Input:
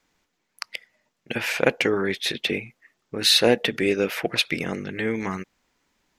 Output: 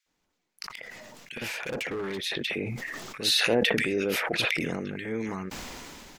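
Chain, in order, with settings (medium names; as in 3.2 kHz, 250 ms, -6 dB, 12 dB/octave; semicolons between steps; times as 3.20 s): bands offset in time highs, lows 60 ms, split 1.7 kHz; 0.74–2.24 s: overload inside the chain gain 23 dB; decay stretcher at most 20 dB/s; trim -6.5 dB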